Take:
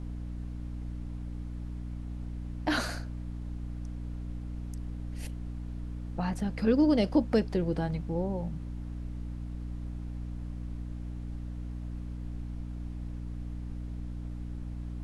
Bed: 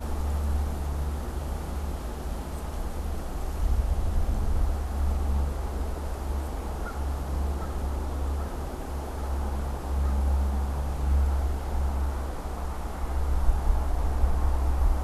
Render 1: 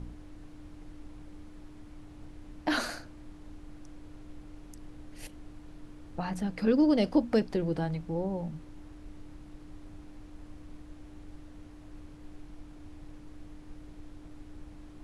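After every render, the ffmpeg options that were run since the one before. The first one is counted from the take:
-af "bandreject=f=60:t=h:w=4,bandreject=f=120:t=h:w=4,bandreject=f=180:t=h:w=4,bandreject=f=240:t=h:w=4"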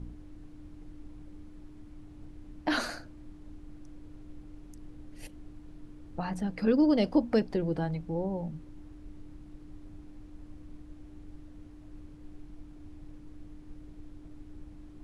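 -af "afftdn=nr=6:nf=-50"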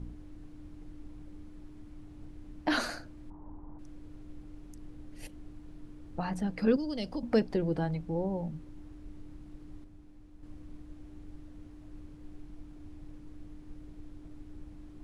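-filter_complex "[0:a]asettb=1/sr,asplit=3[s0][s1][s2];[s0]atrim=end=3.304[s3];[s1]atrim=start=3.3:end=3.79,asetpts=PTS-STARTPTS,afade=t=in:d=0.004:c=qsin,afade=t=out:st=0.486:d=0.004:c=qsin,lowpass=f=940:t=q:w=6.3[s4];[s2]atrim=start=3.786[s5];[s3][s4]acrossfade=d=0.004:c1=hsin:c2=qsin[s6];[s6][s5]acrossfade=d=0.004:c1=qsin:c2=hsin,asettb=1/sr,asplit=3[s7][s8][s9];[s7]atrim=end=6.764[s10];[s8]atrim=start=6.76:end=7.23,asetpts=PTS-STARTPTS,afade=t=in:d=0.004:c=qsin,afade=t=out:st=0.466:d=0.004:c=qsin,acrossover=split=130|3000[s11][s12][s13];[s12]acompressor=threshold=0.01:ratio=2.5:attack=3.2:release=140:knee=2.83:detection=peak[s14];[s11][s14][s13]amix=inputs=3:normalize=0[s15];[s9]atrim=start=7.226[s16];[s10][s15]acrossfade=d=0.004:c1=hsin:c2=qsin[s17];[s17][s16]acrossfade=d=0.004:c1=qsin:c2=hsin,asplit=3[s18][s19][s20];[s18]atrim=end=9.842[s21];[s19]atrim=start=9.838:end=10.432,asetpts=PTS-STARTPTS,volume=0.501[s22];[s20]atrim=start=10.428[s23];[s21][s22]acrossfade=d=0.004:c1=hsin:c2=hsin[s24];[s24][s23]acrossfade=d=0.004:c1=hsin:c2=hsin"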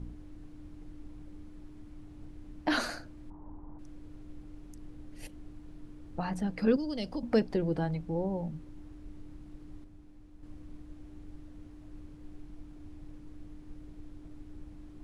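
-af anull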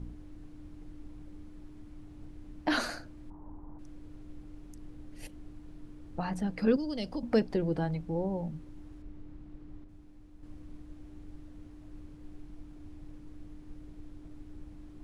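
-filter_complex "[0:a]asettb=1/sr,asplit=3[s0][s1][s2];[s0]atrim=end=9.024[s3];[s1]atrim=start=9.02:end=9.89,asetpts=PTS-STARTPTS,afade=t=in:d=0.004:c=qsin,afade=t=out:st=0.866:d=0.004:c=qsin,lowpass=f=2500:p=1[s4];[s2]atrim=start=9.886[s5];[s3][s4]acrossfade=d=0.004:c1=hsin:c2=qsin[s6];[s6][s5]acrossfade=d=0.004:c1=qsin:c2=hsin"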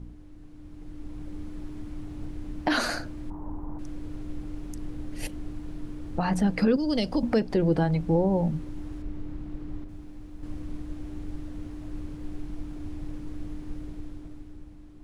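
-af "dynaudnorm=f=160:g=13:m=3.76,alimiter=limit=0.2:level=0:latency=1:release=228"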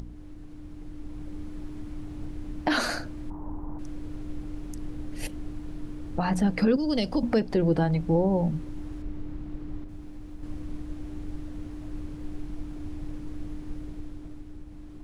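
-af "acompressor=mode=upward:threshold=0.0178:ratio=2.5"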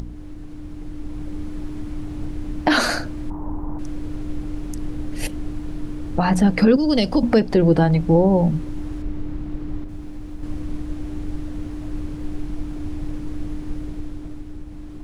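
-af "volume=2.51"

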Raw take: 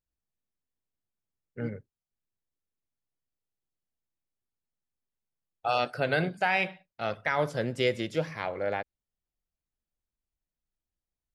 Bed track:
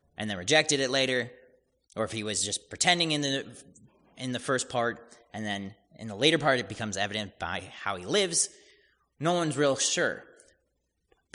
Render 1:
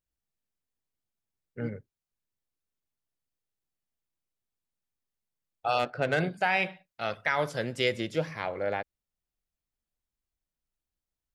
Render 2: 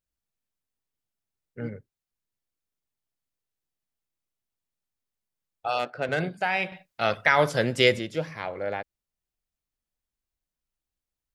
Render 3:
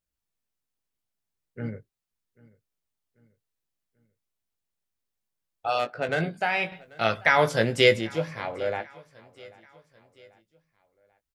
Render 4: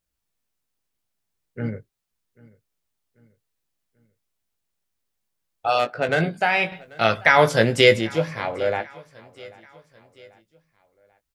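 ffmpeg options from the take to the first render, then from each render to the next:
-filter_complex "[0:a]asettb=1/sr,asplit=3[s0][s1][s2];[s0]atrim=end=5.794[s3];[s1]atrim=start=5.79:end=6.2,asetpts=PTS-STARTPTS,afade=t=in:d=0.004:c=qsin,afade=t=out:st=0.406:d=0.004:c=qsin,adynamicsmooth=sensitivity=3:basefreq=2200[s4];[s2]atrim=start=6.196[s5];[s3][s4]acrossfade=d=0.004:c1=hsin:c2=qsin[s6];[s6][s5]acrossfade=d=0.004:c1=qsin:c2=hsin,asettb=1/sr,asplit=3[s7][s8][s9];[s7]atrim=end=6.864[s10];[s8]atrim=start=6.86:end=7.92,asetpts=PTS-STARTPTS,afade=t=in:d=0.004:c=qsin,afade=t=out:st=1.056:d=0.004:c=qsin,tiltshelf=f=970:g=-3[s11];[s9]atrim=start=7.916[s12];[s10][s11]acrossfade=d=0.004:c1=hsin:c2=qsin[s13];[s13][s12]acrossfade=d=0.004:c1=qsin:c2=hsin"
-filter_complex "[0:a]asettb=1/sr,asplit=3[s0][s1][s2];[s0]atrim=end=5.674[s3];[s1]atrim=start=5.67:end=6.09,asetpts=PTS-STARTPTS,afade=t=in:d=0.004:c=qsin,afade=t=out:st=0.416:d=0.004:c=qsin,highpass=f=210:p=1[s4];[s2]atrim=start=6.086[s5];[s3][s4]acrossfade=d=0.004:c1=hsin:c2=qsin[s6];[s6][s5]acrossfade=d=0.004:c1=qsin:c2=hsin,asplit=3[s7][s8][s9];[s7]atrim=end=6.722[s10];[s8]atrim=start=6.718:end=7.992,asetpts=PTS-STARTPTS,volume=2.37[s11];[s9]atrim=start=7.988[s12];[s10][s11]acrossfade=d=0.004:c1=hsin:c2=hsin[s13];[s13][s12]acrossfade=d=0.004:c1=hsin:c2=hsin"
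-filter_complex "[0:a]asplit=2[s0][s1];[s1]adelay=18,volume=0.398[s2];[s0][s2]amix=inputs=2:normalize=0,aecho=1:1:789|1578|2367:0.0668|0.0314|0.0148"
-af "volume=1.88,alimiter=limit=0.794:level=0:latency=1"

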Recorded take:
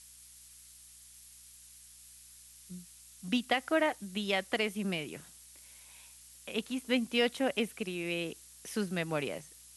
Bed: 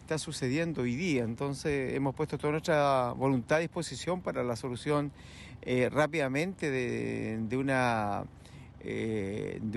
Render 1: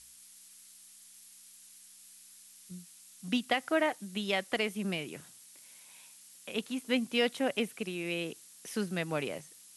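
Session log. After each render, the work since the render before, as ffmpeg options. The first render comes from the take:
-af "bandreject=f=60:t=h:w=4,bandreject=f=120:t=h:w=4"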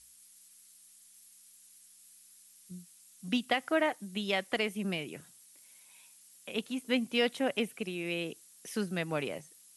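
-af "afftdn=nr=6:nf=-56"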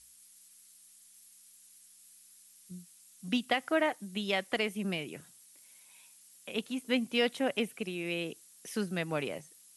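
-af anull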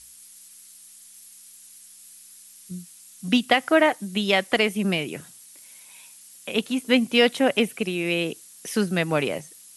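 -af "volume=3.35"

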